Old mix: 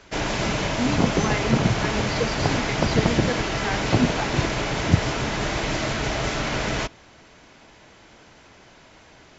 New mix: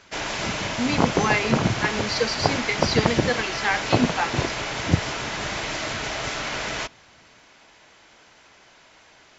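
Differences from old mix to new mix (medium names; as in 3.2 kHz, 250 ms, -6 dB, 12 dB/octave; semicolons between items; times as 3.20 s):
speech +8.5 dB; master: add bass shelf 460 Hz -11.5 dB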